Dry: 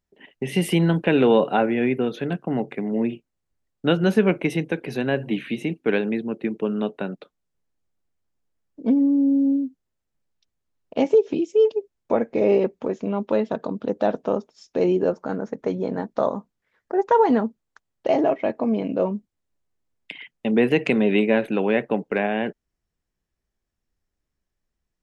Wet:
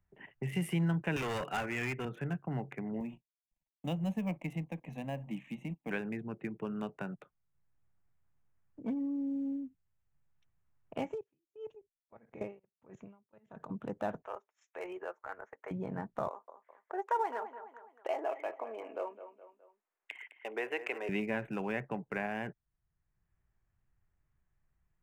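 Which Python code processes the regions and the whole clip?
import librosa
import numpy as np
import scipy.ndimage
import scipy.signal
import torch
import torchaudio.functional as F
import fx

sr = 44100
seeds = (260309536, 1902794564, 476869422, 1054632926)

y = fx.chain(x, sr, fx.weighting(curve='D'),
    fx.overload_stage(gain_db=18.0), at=(1.16, 2.05))
y = fx.chain(y, sr, fx.law_mismatch(coded='A'),
    fx.fixed_phaser(hz=390.0, stages=6), at=(3.0, 5.91))
y = fx.chain(y, sr, fx.high_shelf(hz=4900.0, db=10.5),
    fx.level_steps(step_db=19),
    fx.tremolo_db(hz=1.6, depth_db=36), at=(11.12, 13.7))
y = fx.chain(y, sr, fx.bessel_highpass(hz=630.0, order=6),
    fx.peak_eq(hz=2000.0, db=5.0, octaves=0.82),
    fx.transient(attack_db=-4, sustain_db=-8), at=(14.22, 15.71))
y = fx.chain(y, sr, fx.cheby2_highpass(hz=190.0, order=4, stop_db=40),
    fx.echo_feedback(ms=209, feedback_pct=33, wet_db=-13.5), at=(16.27, 21.09))
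y = fx.wiener(y, sr, points=9)
y = fx.graphic_eq(y, sr, hz=(125, 250, 500, 4000), db=(7, -10, -9, -11))
y = fx.band_squash(y, sr, depth_pct=40)
y = F.gain(torch.from_numpy(y), -6.5).numpy()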